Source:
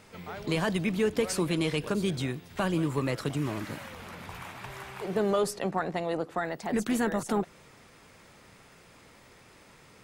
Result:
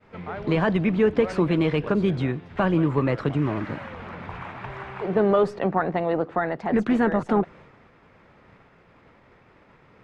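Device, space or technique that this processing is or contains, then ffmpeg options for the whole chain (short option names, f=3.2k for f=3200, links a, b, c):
hearing-loss simulation: -af "lowpass=2k,agate=range=-33dB:threshold=-51dB:ratio=3:detection=peak,volume=7dB"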